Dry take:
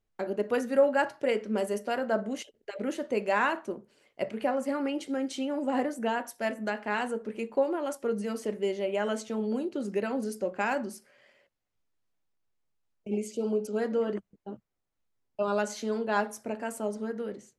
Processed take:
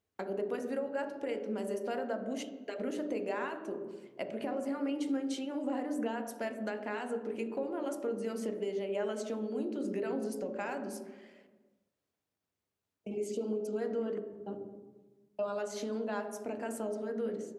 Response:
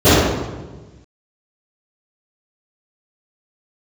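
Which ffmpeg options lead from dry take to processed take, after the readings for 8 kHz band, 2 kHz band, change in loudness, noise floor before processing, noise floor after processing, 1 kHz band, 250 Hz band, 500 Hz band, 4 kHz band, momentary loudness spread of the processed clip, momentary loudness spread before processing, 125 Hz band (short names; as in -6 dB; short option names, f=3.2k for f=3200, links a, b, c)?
-5.0 dB, -10.0 dB, -6.0 dB, -81 dBFS, under -85 dBFS, -9.0 dB, -4.0 dB, -5.5 dB, -7.0 dB, 7 LU, 10 LU, n/a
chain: -filter_complex "[0:a]highpass=110,acompressor=threshold=-35dB:ratio=6,asplit=2[a][b];[1:a]atrim=start_sample=2205,highshelf=f=6.3k:g=-11[c];[b][c]afir=irnorm=-1:irlink=0,volume=-38.5dB[d];[a][d]amix=inputs=2:normalize=0"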